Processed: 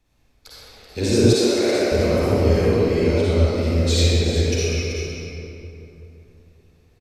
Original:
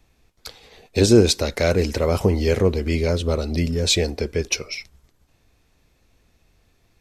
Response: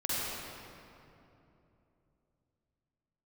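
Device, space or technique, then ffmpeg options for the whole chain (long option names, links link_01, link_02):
cave: -filter_complex "[0:a]aecho=1:1:382:0.355[link_01];[1:a]atrim=start_sample=2205[link_02];[link_01][link_02]afir=irnorm=-1:irlink=0,asettb=1/sr,asplit=3[link_03][link_04][link_05];[link_03]atrim=end=1.334[link_06];[link_04]atrim=start=1.33:end=1.92,asetpts=PTS-STARTPTS,afade=type=in:duration=0.004:curve=qsin,afade=type=out:start_time=0.586:duration=0.004:curve=qsin,highpass=300[link_07];[link_05]atrim=start=1.916[link_08];[link_06][link_07]acrossfade=duration=0.004:curve1=hsin:curve2=qsin[link_09];[link_09][link_08]acrossfade=duration=0.004:curve1=qsin:curve2=hsin,volume=-7.5dB"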